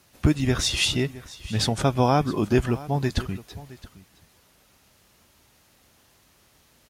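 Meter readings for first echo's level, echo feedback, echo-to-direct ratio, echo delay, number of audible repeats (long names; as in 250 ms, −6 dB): −18.5 dB, repeats not evenly spaced, −18.5 dB, 666 ms, 1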